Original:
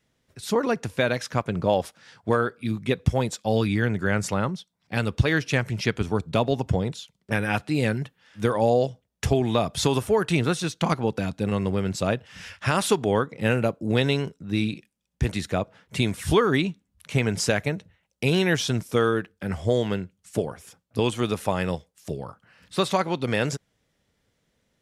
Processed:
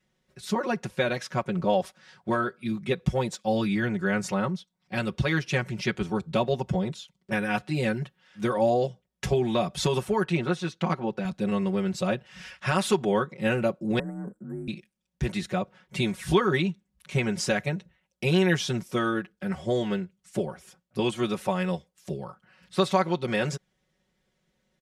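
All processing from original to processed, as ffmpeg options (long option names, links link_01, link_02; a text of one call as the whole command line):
ffmpeg -i in.wav -filter_complex "[0:a]asettb=1/sr,asplit=3[link_01][link_02][link_03];[link_01]atrim=end=10.244[link_04];[link_02]atrim=start=10.24:end=11.25,asetpts=PTS-STARTPTS,afade=type=in:duration=0.004:curve=qsin,afade=type=out:start_time=1.006:duration=0.004:curve=qsin,lowpass=frequency=2800:poles=1,lowshelf=frequency=120:gain=-9,bandreject=frequency=50:width_type=h:width=6,bandreject=frequency=100:width_type=h:width=6[link_05];[link_03]atrim=start=11.246[link_06];[link_04][link_05]acrossfade=duration=0.004:curve1=hsin:curve2=qsin[link_07];[link_07][link_06]acrossfade=duration=0.004:curve1=qsin:curve2=hsin,asettb=1/sr,asplit=3[link_08][link_09][link_10];[link_08]atrim=end=13.994[link_11];[link_09]atrim=start=13.99:end=14.68,asetpts=PTS-STARTPTS,afade=type=in:duration=0.004:curve=qsin,afade=type=out:start_time=0.686:duration=0.004:curve=qsin,acompressor=threshold=-28dB:ratio=10:attack=3.2:release=140:knee=1:detection=peak,afreqshift=40,asuperstop=centerf=3700:order=12:qfactor=0.63[link_12];[link_10]atrim=start=14.676[link_13];[link_11][link_12]acrossfade=duration=0.004:curve1=hsin:curve2=qsin[link_14];[link_14][link_13]acrossfade=duration=0.004:curve1=qsin:curve2=hsin,highshelf=frequency=8500:gain=-6.5,aecho=1:1:5.4:1,volume=-5dB" out.wav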